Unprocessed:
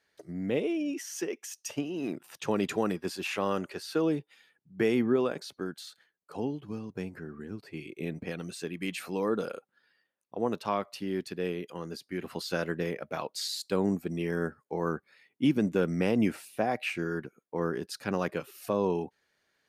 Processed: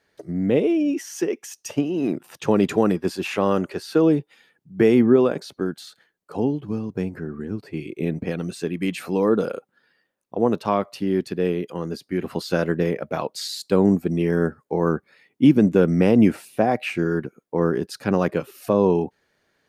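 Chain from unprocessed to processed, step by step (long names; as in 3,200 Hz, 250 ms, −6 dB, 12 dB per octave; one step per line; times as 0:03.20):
tilt shelving filter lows +4 dB
level +7.5 dB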